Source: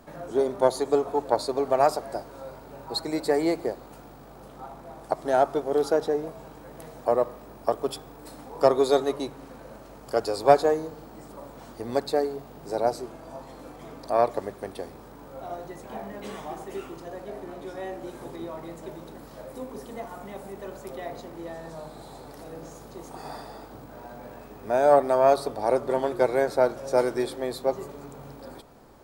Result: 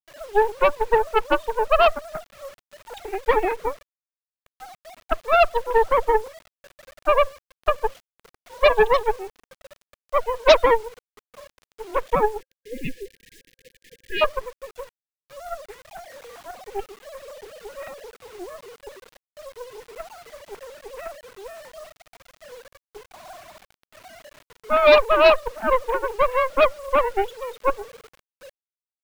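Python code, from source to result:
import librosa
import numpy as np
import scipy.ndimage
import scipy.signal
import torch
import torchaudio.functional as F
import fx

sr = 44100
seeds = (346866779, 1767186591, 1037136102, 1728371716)

y = fx.sine_speech(x, sr)
y = fx.cheby_harmonics(y, sr, harmonics=(6, 7, 8), levels_db=(-18, -29, -9), full_scale_db=-6.5)
y = fx.quant_dither(y, sr, seeds[0], bits=8, dither='none')
y = fx.spec_erase(y, sr, start_s=12.41, length_s=1.81, low_hz=530.0, high_hz=1600.0)
y = y * librosa.db_to_amplitude(2.5)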